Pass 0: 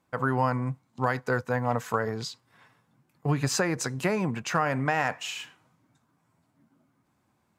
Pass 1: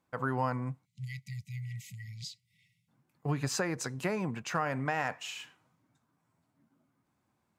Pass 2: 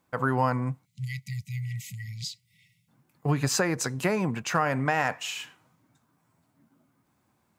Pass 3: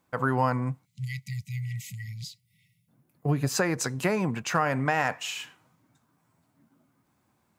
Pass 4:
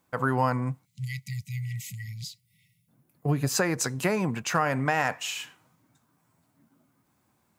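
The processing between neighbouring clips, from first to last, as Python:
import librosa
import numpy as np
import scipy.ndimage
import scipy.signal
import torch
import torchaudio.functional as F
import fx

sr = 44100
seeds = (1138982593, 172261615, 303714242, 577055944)

y1 = fx.spec_erase(x, sr, start_s=0.85, length_s=2.03, low_hz=210.0, high_hz=1900.0)
y1 = y1 * librosa.db_to_amplitude(-6.0)
y2 = fx.high_shelf(y1, sr, hz=11000.0, db=6.0)
y2 = y2 * librosa.db_to_amplitude(6.5)
y3 = fx.spec_box(y2, sr, start_s=2.13, length_s=1.43, low_hz=750.0, high_hz=9000.0, gain_db=-6)
y4 = fx.high_shelf(y3, sr, hz=6300.0, db=4.5)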